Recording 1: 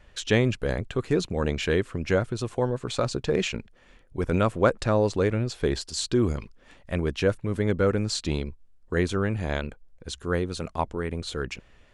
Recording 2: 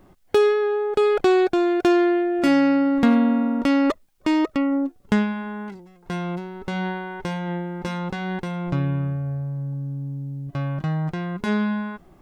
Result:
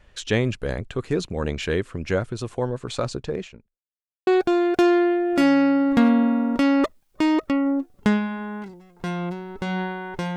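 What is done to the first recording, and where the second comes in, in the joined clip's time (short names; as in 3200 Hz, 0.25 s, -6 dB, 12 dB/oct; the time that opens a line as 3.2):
recording 1
3.02–3.81 studio fade out
3.81–4.27 mute
4.27 switch to recording 2 from 1.33 s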